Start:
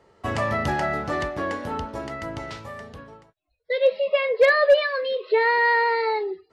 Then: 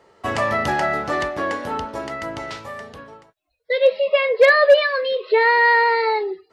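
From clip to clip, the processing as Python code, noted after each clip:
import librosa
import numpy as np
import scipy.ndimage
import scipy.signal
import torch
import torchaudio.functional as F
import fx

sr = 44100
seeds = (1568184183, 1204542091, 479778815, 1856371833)

y = fx.low_shelf(x, sr, hz=200.0, db=-10.0)
y = y * 10.0 ** (5.0 / 20.0)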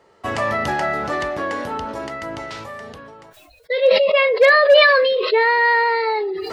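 y = fx.sustainer(x, sr, db_per_s=24.0)
y = y * 10.0 ** (-1.0 / 20.0)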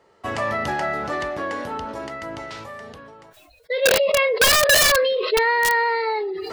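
y = (np.mod(10.0 ** (7.5 / 20.0) * x + 1.0, 2.0) - 1.0) / 10.0 ** (7.5 / 20.0)
y = y * 10.0 ** (-3.0 / 20.0)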